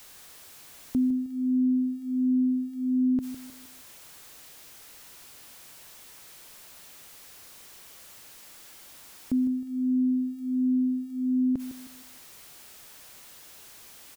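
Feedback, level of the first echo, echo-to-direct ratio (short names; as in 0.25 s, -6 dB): 36%, -12.5 dB, -12.0 dB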